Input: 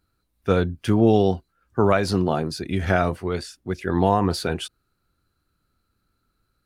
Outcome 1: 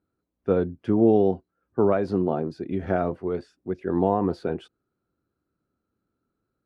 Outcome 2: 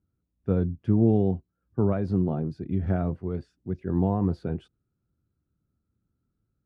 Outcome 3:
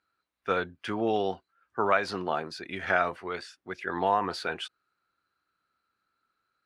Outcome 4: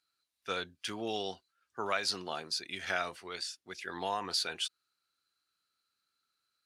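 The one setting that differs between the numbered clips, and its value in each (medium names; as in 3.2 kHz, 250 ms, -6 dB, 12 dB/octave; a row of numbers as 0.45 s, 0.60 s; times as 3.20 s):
band-pass filter, frequency: 360 Hz, 140 Hz, 1.6 kHz, 4.7 kHz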